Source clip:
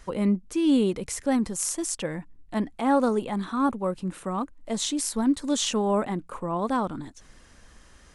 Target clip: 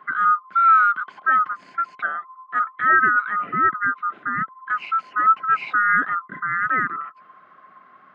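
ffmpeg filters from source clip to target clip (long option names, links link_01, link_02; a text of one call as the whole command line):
ffmpeg -i in.wav -af "afftfilt=real='real(if(lt(b,960),b+48*(1-2*mod(floor(b/48),2)),b),0)':imag='imag(if(lt(b,960),b+48*(1-2*mod(floor(b/48),2)),b),0)':win_size=2048:overlap=0.75,highpass=frequency=160:width=0.5412,highpass=frequency=160:width=1.3066,equalizer=frequency=500:width_type=q:width=4:gain=-6,equalizer=frequency=920:width_type=q:width=4:gain=-7,equalizer=frequency=1400:width_type=q:width=4:gain=4,lowpass=frequency=2200:width=0.5412,lowpass=frequency=2200:width=1.3066,volume=4dB" out.wav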